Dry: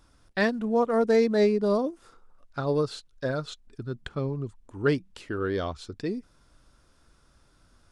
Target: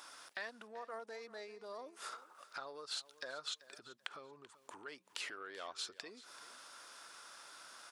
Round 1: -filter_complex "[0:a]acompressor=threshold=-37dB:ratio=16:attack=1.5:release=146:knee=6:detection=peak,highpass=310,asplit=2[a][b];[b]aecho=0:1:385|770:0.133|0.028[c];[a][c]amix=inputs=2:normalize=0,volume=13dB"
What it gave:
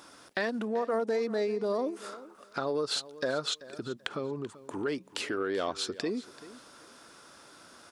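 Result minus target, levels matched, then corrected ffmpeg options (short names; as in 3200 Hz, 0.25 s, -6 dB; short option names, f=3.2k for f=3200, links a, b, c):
250 Hz band +11.0 dB; compressor: peak gain reduction -10.5 dB
-filter_complex "[0:a]acompressor=threshold=-48dB:ratio=16:attack=1.5:release=146:knee=6:detection=peak,highpass=850,asplit=2[a][b];[b]aecho=0:1:385|770:0.133|0.028[c];[a][c]amix=inputs=2:normalize=0,volume=13dB"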